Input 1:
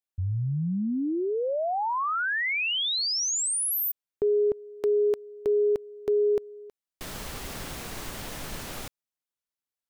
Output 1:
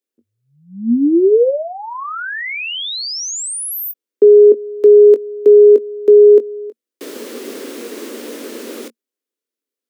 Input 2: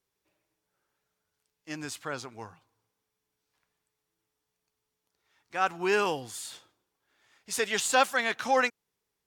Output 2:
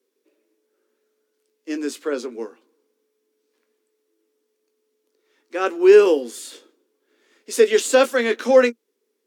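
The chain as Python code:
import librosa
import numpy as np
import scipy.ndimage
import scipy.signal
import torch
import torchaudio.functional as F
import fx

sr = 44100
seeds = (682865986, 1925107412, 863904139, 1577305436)

y = scipy.signal.sosfilt(scipy.signal.cheby1(6, 1.0, 230.0, 'highpass', fs=sr, output='sos'), x)
y = fx.low_shelf_res(y, sr, hz=590.0, db=8.0, q=3.0)
y = fx.doubler(y, sr, ms=21.0, db=-11.0)
y = F.gain(torch.from_numpy(y), 4.5).numpy()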